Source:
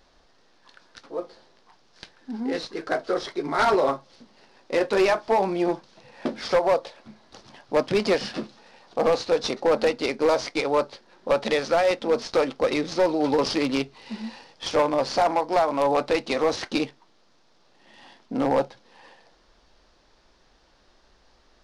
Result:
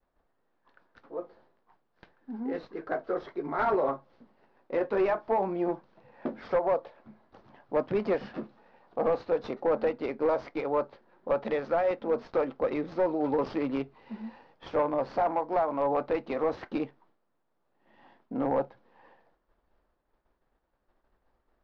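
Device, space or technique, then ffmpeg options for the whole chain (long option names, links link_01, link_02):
hearing-loss simulation: -af "lowpass=1600,agate=range=-33dB:threshold=-53dB:ratio=3:detection=peak,volume=-5.5dB"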